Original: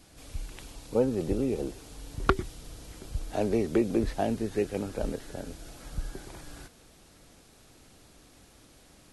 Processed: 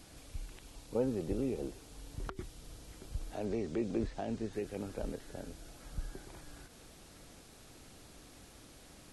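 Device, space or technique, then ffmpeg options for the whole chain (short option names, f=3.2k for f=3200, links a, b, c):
de-esser from a sidechain: -filter_complex "[0:a]asplit=2[a][b];[b]highpass=4.3k,apad=whole_len=402379[c];[a][c]sidechaincompress=threshold=-59dB:ratio=10:attack=2.3:release=86,asettb=1/sr,asplit=3[d][e][f];[d]atrim=end=3.454[g];[e]atrim=start=3.45:end=4.53,asetpts=PTS-STARTPTS,afade=t=in:d=0.004:c=qsin,afade=t=out:st=1.076:d=0.004:c=qsin,lowpass=f=8.3k:w=0.5412,lowpass=f=8.3k:w=1.3066[h];[f]atrim=start=4.526[i];[g][h]acrossfade=d=0.004:c1=hsin:c2=qsin[j];[j][i]acrossfade=d=0.004:c1=qsin:c2=hsin,volume=2.5dB"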